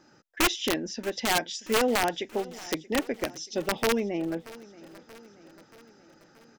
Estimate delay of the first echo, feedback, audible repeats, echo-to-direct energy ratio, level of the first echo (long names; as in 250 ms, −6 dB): 630 ms, 58%, 4, −18.0 dB, −20.0 dB